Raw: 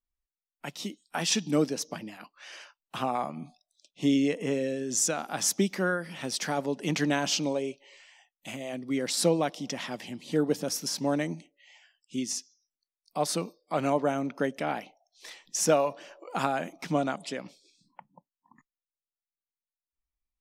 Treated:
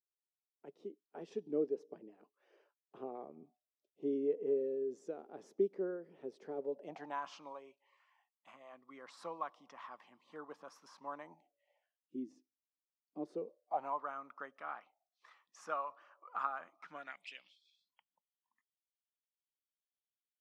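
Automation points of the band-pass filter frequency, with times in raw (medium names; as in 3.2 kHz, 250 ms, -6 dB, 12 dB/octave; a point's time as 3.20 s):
band-pass filter, Q 6.9
6.59 s 410 Hz
7.22 s 1.1 kHz
11.14 s 1.1 kHz
12.23 s 310 Hz
13.18 s 310 Hz
14.02 s 1.2 kHz
16.79 s 1.2 kHz
17.45 s 3.2 kHz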